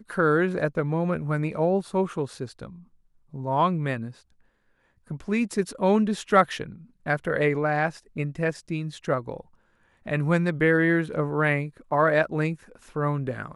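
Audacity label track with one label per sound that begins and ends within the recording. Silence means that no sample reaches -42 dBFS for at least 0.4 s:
3.330000	4.120000	sound
5.100000	9.410000	sound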